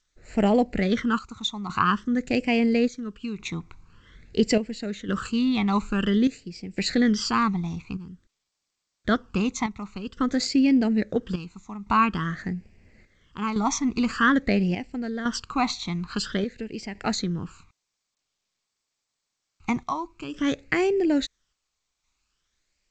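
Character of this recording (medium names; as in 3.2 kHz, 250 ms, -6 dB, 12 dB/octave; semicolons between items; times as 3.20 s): chopped level 0.59 Hz, depth 65%, duty 70%; phasing stages 12, 0.49 Hz, lowest notch 510–1200 Hz; G.722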